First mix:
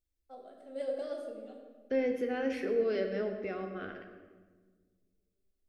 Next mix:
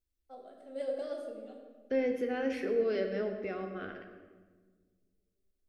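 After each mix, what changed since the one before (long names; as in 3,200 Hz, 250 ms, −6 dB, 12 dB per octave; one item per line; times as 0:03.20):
nothing changed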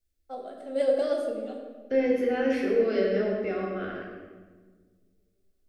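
first voice +11.5 dB
second voice: send +10.5 dB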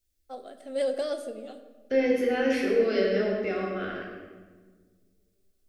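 first voice: send −10.0 dB
master: add high-shelf EQ 2,300 Hz +8 dB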